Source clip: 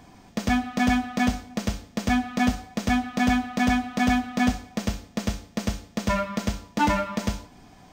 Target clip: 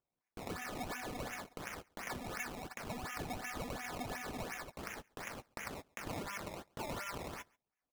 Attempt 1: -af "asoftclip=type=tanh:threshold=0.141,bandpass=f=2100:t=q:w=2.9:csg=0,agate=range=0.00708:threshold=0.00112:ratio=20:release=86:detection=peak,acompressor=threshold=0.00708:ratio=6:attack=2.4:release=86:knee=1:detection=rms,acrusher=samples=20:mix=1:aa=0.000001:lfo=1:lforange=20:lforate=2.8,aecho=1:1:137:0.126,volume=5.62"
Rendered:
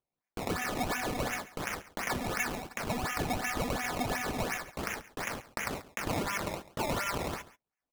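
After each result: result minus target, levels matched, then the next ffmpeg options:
compression: peak gain reduction -9.5 dB; echo-to-direct +9.5 dB
-af "asoftclip=type=tanh:threshold=0.141,bandpass=f=2100:t=q:w=2.9:csg=0,agate=range=0.00708:threshold=0.00112:ratio=20:release=86:detection=peak,acompressor=threshold=0.00188:ratio=6:attack=2.4:release=86:knee=1:detection=rms,acrusher=samples=20:mix=1:aa=0.000001:lfo=1:lforange=20:lforate=2.8,aecho=1:1:137:0.126,volume=5.62"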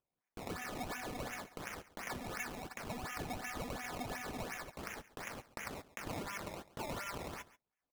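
echo-to-direct +9.5 dB
-af "asoftclip=type=tanh:threshold=0.141,bandpass=f=2100:t=q:w=2.9:csg=0,agate=range=0.00708:threshold=0.00112:ratio=20:release=86:detection=peak,acompressor=threshold=0.00188:ratio=6:attack=2.4:release=86:knee=1:detection=rms,acrusher=samples=20:mix=1:aa=0.000001:lfo=1:lforange=20:lforate=2.8,aecho=1:1:137:0.0422,volume=5.62"

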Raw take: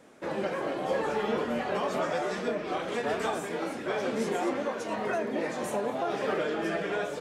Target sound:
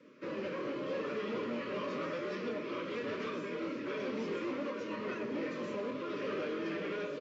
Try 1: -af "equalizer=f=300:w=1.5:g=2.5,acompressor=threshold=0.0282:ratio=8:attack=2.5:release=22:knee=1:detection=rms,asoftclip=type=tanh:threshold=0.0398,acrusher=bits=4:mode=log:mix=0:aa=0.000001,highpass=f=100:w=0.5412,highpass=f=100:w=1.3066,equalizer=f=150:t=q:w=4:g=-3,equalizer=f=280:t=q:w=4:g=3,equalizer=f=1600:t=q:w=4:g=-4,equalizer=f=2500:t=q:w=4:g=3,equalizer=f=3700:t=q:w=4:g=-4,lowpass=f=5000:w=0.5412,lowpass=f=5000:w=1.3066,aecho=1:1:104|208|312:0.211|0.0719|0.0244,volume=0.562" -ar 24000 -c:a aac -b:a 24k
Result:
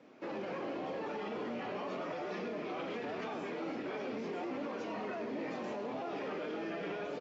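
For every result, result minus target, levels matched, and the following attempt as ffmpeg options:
compression: peak gain reduction +9 dB; 1 kHz band +4.0 dB
-af "equalizer=f=300:w=1.5:g=2.5,asoftclip=type=tanh:threshold=0.0398,acrusher=bits=4:mode=log:mix=0:aa=0.000001,highpass=f=100:w=0.5412,highpass=f=100:w=1.3066,equalizer=f=150:t=q:w=4:g=-3,equalizer=f=280:t=q:w=4:g=3,equalizer=f=1600:t=q:w=4:g=-4,equalizer=f=2500:t=q:w=4:g=3,equalizer=f=3700:t=q:w=4:g=-4,lowpass=f=5000:w=0.5412,lowpass=f=5000:w=1.3066,aecho=1:1:104|208|312:0.211|0.0719|0.0244,volume=0.562" -ar 24000 -c:a aac -b:a 24k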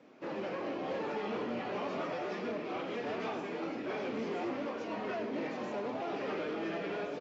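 1 kHz band +3.5 dB
-af "asuperstop=centerf=770:order=20:qfactor=2.3,equalizer=f=300:w=1.5:g=2.5,asoftclip=type=tanh:threshold=0.0398,acrusher=bits=4:mode=log:mix=0:aa=0.000001,highpass=f=100:w=0.5412,highpass=f=100:w=1.3066,equalizer=f=150:t=q:w=4:g=-3,equalizer=f=280:t=q:w=4:g=3,equalizer=f=1600:t=q:w=4:g=-4,equalizer=f=2500:t=q:w=4:g=3,equalizer=f=3700:t=q:w=4:g=-4,lowpass=f=5000:w=0.5412,lowpass=f=5000:w=1.3066,aecho=1:1:104|208|312:0.211|0.0719|0.0244,volume=0.562" -ar 24000 -c:a aac -b:a 24k

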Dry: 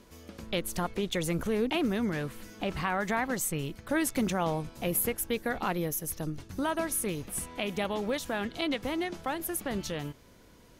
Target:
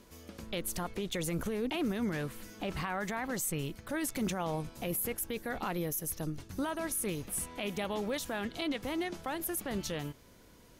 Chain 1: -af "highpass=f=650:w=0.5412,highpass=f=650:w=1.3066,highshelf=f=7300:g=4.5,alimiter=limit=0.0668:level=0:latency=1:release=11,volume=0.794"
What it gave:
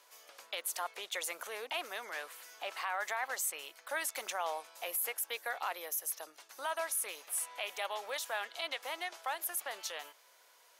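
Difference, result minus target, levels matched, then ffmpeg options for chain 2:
500 Hz band -3.5 dB
-af "highshelf=f=7300:g=4.5,alimiter=limit=0.0668:level=0:latency=1:release=11,volume=0.794"

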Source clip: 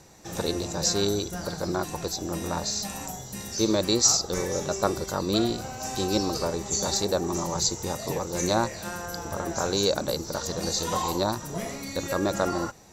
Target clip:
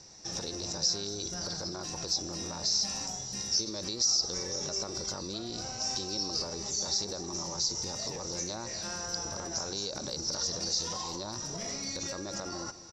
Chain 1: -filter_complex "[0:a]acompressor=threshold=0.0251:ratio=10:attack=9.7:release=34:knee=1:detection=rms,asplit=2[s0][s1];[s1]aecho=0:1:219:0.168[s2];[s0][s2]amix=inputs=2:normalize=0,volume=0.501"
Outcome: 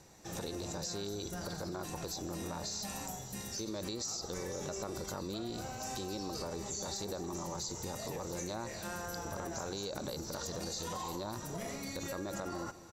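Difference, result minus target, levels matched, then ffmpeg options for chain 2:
4 kHz band -4.5 dB
-filter_complex "[0:a]acompressor=threshold=0.0251:ratio=10:attack=9.7:release=34:knee=1:detection=rms,lowpass=f=5400:t=q:w=9.1,asplit=2[s0][s1];[s1]aecho=0:1:219:0.168[s2];[s0][s2]amix=inputs=2:normalize=0,volume=0.501"

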